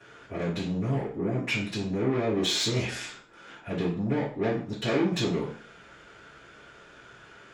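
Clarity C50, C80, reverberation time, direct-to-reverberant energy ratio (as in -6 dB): 6.5 dB, 11.5 dB, 0.45 s, -16.0 dB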